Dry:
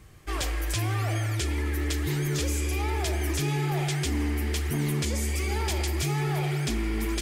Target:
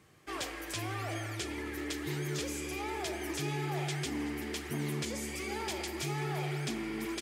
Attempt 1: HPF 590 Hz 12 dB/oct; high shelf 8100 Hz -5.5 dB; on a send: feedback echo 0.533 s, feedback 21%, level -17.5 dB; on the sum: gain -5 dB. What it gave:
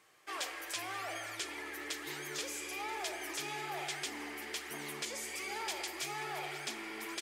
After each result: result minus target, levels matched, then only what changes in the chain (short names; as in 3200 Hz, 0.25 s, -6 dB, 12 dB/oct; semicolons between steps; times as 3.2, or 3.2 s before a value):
125 Hz band -17.0 dB; echo 0.153 s late
change: HPF 170 Hz 12 dB/oct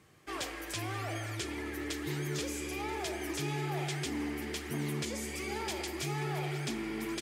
echo 0.153 s late
change: feedback echo 0.38 s, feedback 21%, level -17.5 dB